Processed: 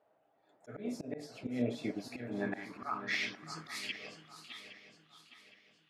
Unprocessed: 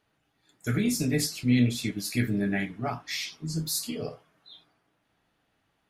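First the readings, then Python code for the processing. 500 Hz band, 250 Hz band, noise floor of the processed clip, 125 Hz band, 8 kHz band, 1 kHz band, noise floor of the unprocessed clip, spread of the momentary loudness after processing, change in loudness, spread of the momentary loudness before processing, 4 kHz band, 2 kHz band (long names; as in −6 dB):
−6.5 dB, −12.5 dB, −73 dBFS, −18.5 dB, −19.0 dB, −3.5 dB, −74 dBFS, 20 LU, −11.0 dB, 11 LU, −9.5 dB, −4.5 dB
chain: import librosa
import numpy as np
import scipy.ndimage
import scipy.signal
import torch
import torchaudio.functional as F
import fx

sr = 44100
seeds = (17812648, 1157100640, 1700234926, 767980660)

y = fx.filter_sweep_bandpass(x, sr, from_hz=630.0, to_hz=3000.0, start_s=1.88, end_s=4.23, q=3.4)
y = fx.auto_swell(y, sr, attack_ms=227.0)
y = fx.echo_swing(y, sr, ms=814, ratio=3, feedback_pct=37, wet_db=-11.0)
y = F.gain(torch.from_numpy(y), 11.0).numpy()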